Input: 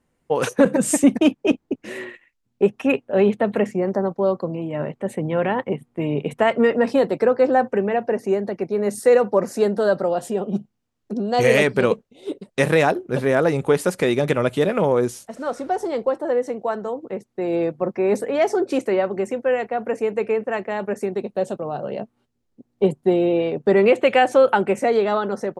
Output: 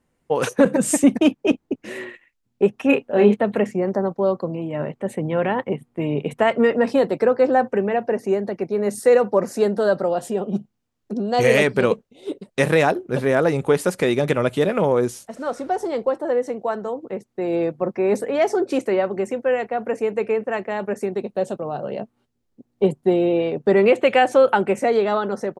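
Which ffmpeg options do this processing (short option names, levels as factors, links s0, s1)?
-filter_complex "[0:a]asplit=3[s0][s1][s2];[s0]afade=t=out:st=2.88:d=0.02[s3];[s1]asplit=2[s4][s5];[s5]adelay=29,volume=0.668[s6];[s4][s6]amix=inputs=2:normalize=0,afade=t=in:st=2.88:d=0.02,afade=t=out:st=3.34:d=0.02[s7];[s2]afade=t=in:st=3.34:d=0.02[s8];[s3][s7][s8]amix=inputs=3:normalize=0"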